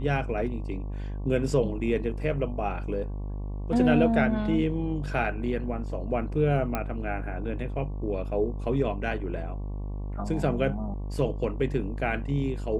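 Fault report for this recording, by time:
mains buzz 50 Hz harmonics 23 −33 dBFS
0:06.75: click −14 dBFS

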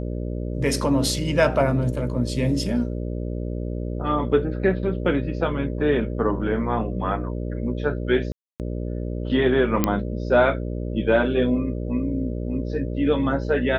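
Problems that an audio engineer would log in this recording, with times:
mains buzz 60 Hz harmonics 10 −28 dBFS
0:08.32–0:08.60: drop-out 278 ms
0:09.84: click −5 dBFS

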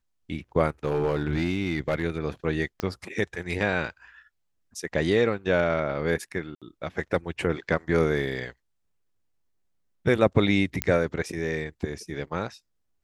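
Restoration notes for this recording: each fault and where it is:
0:00.85–0:02.03: clipping −19 dBFS
0:02.80: click −15 dBFS
0:06.55–0:06.62: drop-out 66 ms
0:10.82: click −7 dBFS

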